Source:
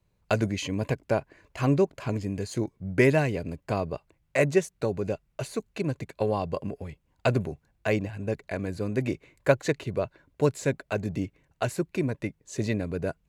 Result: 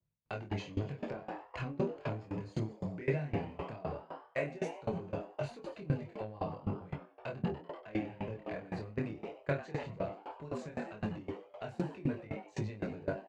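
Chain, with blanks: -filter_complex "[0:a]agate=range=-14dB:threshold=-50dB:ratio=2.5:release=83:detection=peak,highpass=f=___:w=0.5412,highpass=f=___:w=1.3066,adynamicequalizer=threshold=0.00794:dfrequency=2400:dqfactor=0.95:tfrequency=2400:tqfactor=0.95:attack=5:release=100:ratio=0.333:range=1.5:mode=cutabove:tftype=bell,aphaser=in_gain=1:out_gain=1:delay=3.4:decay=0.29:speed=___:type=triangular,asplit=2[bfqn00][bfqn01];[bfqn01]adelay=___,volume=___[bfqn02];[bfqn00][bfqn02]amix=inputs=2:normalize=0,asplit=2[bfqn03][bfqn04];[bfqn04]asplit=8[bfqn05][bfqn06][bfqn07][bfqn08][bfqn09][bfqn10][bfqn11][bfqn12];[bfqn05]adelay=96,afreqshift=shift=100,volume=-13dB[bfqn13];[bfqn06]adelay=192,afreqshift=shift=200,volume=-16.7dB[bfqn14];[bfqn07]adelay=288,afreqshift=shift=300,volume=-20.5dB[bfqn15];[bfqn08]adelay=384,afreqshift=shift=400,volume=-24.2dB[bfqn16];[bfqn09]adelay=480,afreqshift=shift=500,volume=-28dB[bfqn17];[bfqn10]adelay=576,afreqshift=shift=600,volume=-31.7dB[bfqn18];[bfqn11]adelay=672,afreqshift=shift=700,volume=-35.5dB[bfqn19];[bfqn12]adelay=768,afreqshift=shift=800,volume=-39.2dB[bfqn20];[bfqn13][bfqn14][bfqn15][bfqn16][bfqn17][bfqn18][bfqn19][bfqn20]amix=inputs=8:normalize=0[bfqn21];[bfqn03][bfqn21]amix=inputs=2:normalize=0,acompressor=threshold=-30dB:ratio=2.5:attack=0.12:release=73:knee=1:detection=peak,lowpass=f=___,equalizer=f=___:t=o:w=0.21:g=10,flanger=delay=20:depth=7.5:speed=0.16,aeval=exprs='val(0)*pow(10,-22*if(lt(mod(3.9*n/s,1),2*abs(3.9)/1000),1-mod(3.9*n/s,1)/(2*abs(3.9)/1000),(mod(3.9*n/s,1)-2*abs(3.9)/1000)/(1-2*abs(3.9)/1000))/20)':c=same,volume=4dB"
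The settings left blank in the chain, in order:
43, 43, 1.2, 28, -3dB, 3700, 160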